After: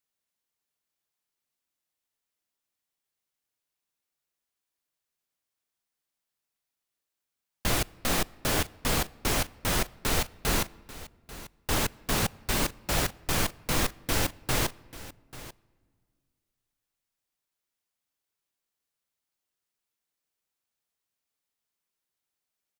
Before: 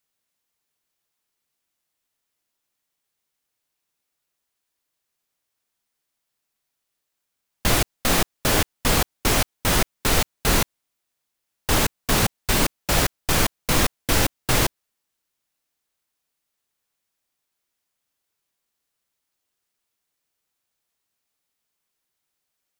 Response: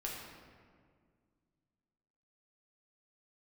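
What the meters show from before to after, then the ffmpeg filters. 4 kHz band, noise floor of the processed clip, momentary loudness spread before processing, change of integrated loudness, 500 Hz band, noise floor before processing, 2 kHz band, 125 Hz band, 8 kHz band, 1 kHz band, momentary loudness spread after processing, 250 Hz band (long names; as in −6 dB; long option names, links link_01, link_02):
−7.0 dB, below −85 dBFS, 1 LU, −7.0 dB, −7.0 dB, −80 dBFS, −7.0 dB, −7.0 dB, −7.0 dB, −7.0 dB, 17 LU, −7.0 dB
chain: -filter_complex "[0:a]aecho=1:1:840:0.141,asplit=2[link_01][link_02];[1:a]atrim=start_sample=2205[link_03];[link_02][link_03]afir=irnorm=-1:irlink=0,volume=-21.5dB[link_04];[link_01][link_04]amix=inputs=2:normalize=0,volume=-7.5dB"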